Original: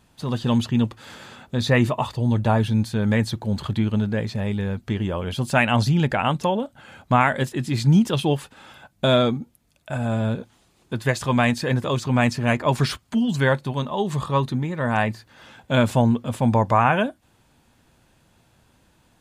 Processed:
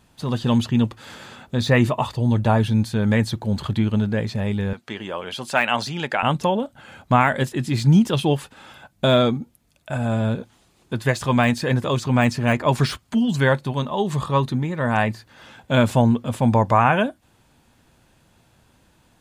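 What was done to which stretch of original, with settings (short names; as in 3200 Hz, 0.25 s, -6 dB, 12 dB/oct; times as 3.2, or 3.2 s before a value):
4.73–6.23 weighting filter A
whole clip: de-esser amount 60%; gain +1.5 dB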